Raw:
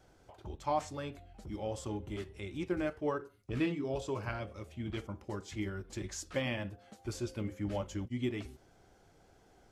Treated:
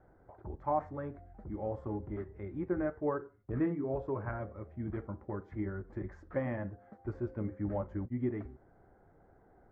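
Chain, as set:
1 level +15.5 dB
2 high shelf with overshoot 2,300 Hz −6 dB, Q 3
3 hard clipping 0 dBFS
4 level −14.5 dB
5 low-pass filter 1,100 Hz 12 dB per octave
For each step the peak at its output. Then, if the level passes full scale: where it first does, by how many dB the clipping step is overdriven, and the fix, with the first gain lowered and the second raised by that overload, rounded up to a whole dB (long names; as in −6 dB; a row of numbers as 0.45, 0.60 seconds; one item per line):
−5.0, −4.0, −4.0, −18.5, −20.0 dBFS
no step passes full scale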